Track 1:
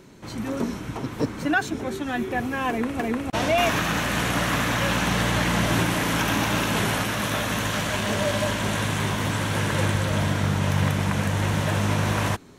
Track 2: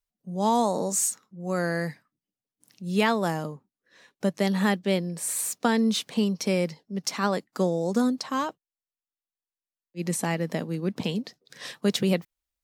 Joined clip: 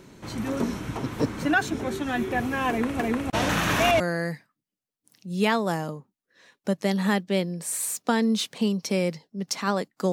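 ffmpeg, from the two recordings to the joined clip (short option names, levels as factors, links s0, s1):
-filter_complex "[0:a]apad=whole_dur=10.12,atrim=end=10.12,asplit=2[s0][s1];[s0]atrim=end=3.492[s2];[s1]atrim=start=3.488:end=4.002,asetpts=PTS-STARTPTS,areverse[s3];[1:a]atrim=start=1.558:end=7.68[s4];[s2][s3]acrossfade=d=0.004:c1=hsin:c2=hsin[s5];[s5][s4]acrossfade=d=0.004:c1=hsin:c2=hsin"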